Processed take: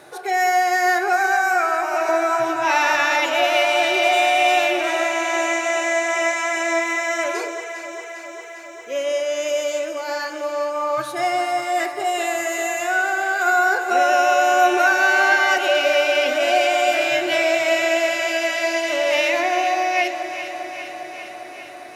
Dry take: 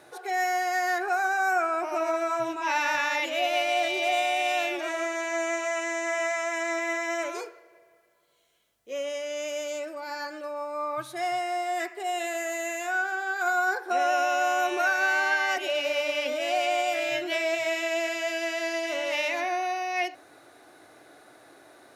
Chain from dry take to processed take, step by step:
0:01.13–0:02.09: high-pass filter 670 Hz 6 dB per octave
delay that swaps between a low-pass and a high-pass 201 ms, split 1,300 Hz, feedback 85%, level −9 dB
on a send at −13 dB: convolution reverb RT60 0.40 s, pre-delay 5 ms
on the sum: level +7.5 dB

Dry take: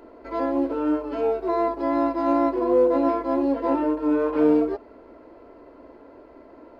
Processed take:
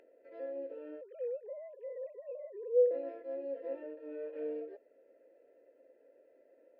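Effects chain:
0:01.01–0:02.91: three sine waves on the formant tracks
formant filter e
upward compression, threshold −51 dBFS
level −9 dB

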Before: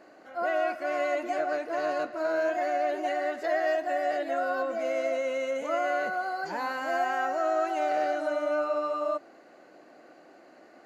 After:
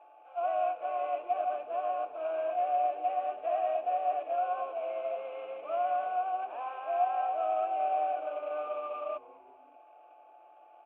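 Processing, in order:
variable-slope delta modulation 16 kbit/s
Butterworth high-pass 290 Hz 96 dB per octave
steady tone 860 Hz −47 dBFS
formant filter a
echo with shifted repeats 194 ms, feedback 48%, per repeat −110 Hz, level −21.5 dB
level +2 dB

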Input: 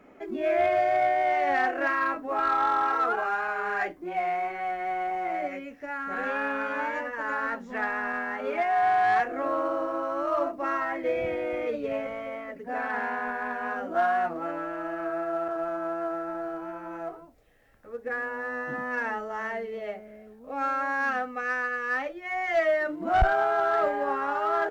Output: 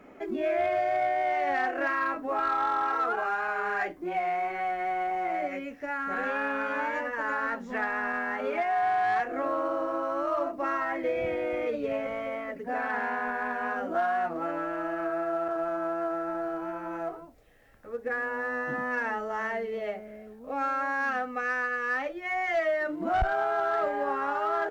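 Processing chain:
downward compressor 2 to 1, threshold −31 dBFS, peak gain reduction 8.5 dB
level +2.5 dB

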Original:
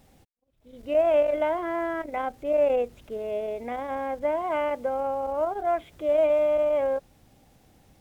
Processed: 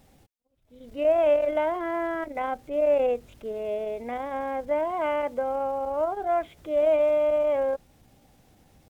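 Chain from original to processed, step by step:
tempo change 0.9×

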